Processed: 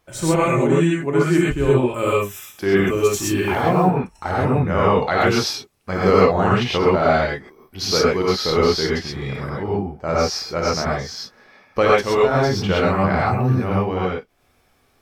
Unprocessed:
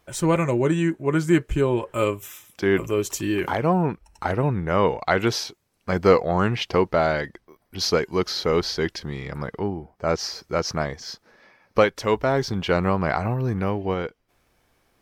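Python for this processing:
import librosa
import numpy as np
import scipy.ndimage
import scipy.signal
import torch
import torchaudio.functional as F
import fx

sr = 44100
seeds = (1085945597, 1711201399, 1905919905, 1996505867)

y = fx.law_mismatch(x, sr, coded='mu', at=(2.91, 3.77))
y = fx.rev_gated(y, sr, seeds[0], gate_ms=150, shape='rising', drr_db=-6.0)
y = y * 10.0 ** (-2.0 / 20.0)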